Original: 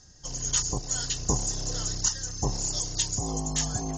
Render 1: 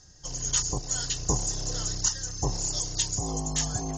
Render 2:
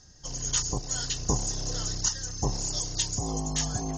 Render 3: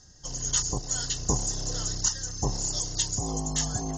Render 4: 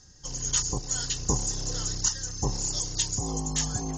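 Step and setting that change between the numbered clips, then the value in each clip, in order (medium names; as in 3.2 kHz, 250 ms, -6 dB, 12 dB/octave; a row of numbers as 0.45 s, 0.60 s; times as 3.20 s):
band-stop, frequency: 230 Hz, 7.4 kHz, 2.4 kHz, 660 Hz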